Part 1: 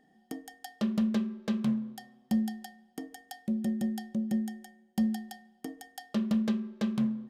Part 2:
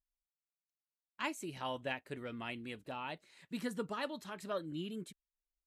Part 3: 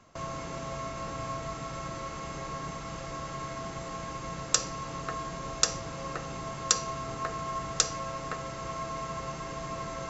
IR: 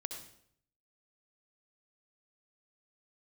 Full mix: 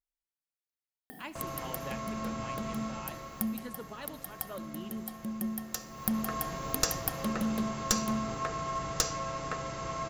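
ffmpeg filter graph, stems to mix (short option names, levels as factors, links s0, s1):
-filter_complex "[0:a]acompressor=mode=upward:threshold=0.0355:ratio=2.5,aexciter=amount=8.2:drive=7.8:freq=9700,adelay=1100,volume=0.562,asplit=2[s0][s1];[s1]volume=0.0944[s2];[1:a]volume=0.447,asplit=3[s3][s4][s5];[s4]volume=0.335[s6];[2:a]acontrast=57,adelay=1200,volume=1.33,afade=t=out:st=2.84:d=0.73:silence=0.334965,afade=t=in:st=5.87:d=0.54:silence=0.251189,asplit=2[s7][s8];[s8]volume=0.141[s9];[s5]apad=whole_len=370136[s10];[s0][s10]sidechaincompress=threshold=0.00251:ratio=8:attack=41:release=795[s11];[3:a]atrim=start_sample=2205[s12];[s2][s6][s9]amix=inputs=3:normalize=0[s13];[s13][s12]afir=irnorm=-1:irlink=0[s14];[s11][s3][s7][s14]amix=inputs=4:normalize=0,aeval=exprs='clip(val(0),-1,0.0473)':c=same"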